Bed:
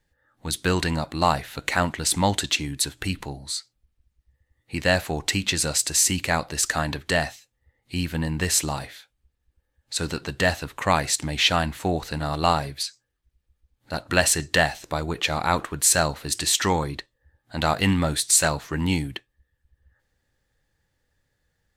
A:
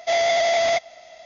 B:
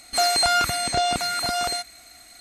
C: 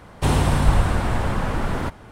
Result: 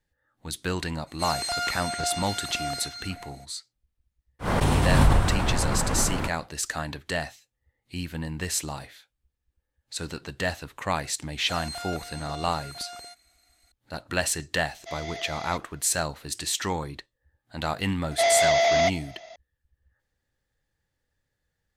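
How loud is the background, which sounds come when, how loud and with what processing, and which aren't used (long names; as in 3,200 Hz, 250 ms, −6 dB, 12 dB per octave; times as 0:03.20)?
bed −6.5 dB
0:01.06: mix in B −9.5 dB, fades 0.02 s + echo through a band-pass that steps 204 ms, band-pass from 4,600 Hz, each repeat −1.4 octaves, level −2 dB
0:04.39: mix in C −4 dB, fades 0.10 s + background raised ahead of every attack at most 27 dB per second
0:11.32: mix in B −17 dB
0:14.79: mix in A −15 dB + parametric band 300 Hz −13.5 dB 1.6 octaves
0:18.11: mix in A −1 dB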